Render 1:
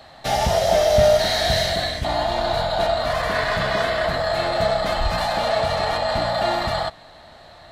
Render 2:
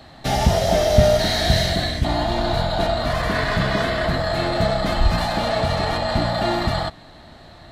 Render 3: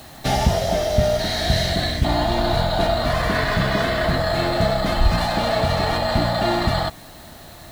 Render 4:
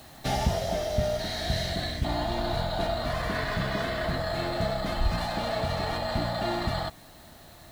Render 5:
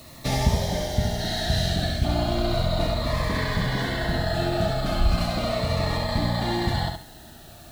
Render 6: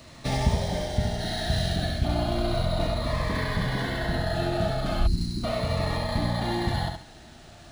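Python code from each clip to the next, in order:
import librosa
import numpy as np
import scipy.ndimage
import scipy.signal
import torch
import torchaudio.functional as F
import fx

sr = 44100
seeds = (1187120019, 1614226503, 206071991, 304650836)

y1 = fx.low_shelf_res(x, sr, hz=420.0, db=6.5, q=1.5)
y2 = fx.rider(y1, sr, range_db=10, speed_s=0.5)
y2 = fx.quant_dither(y2, sr, seeds[0], bits=8, dither='triangular')
y3 = fx.rider(y2, sr, range_db=10, speed_s=2.0)
y3 = y3 * librosa.db_to_amplitude(-9.0)
y4 = fx.echo_feedback(y3, sr, ms=69, feedback_pct=27, wet_db=-5.0)
y4 = fx.notch_cascade(y4, sr, direction='falling', hz=0.35)
y4 = y4 * librosa.db_to_amplitude(4.0)
y5 = fx.spec_erase(y4, sr, start_s=5.07, length_s=0.37, low_hz=400.0, high_hz=3800.0)
y5 = np.interp(np.arange(len(y5)), np.arange(len(y5))[::3], y5[::3])
y5 = y5 * librosa.db_to_amplitude(-2.0)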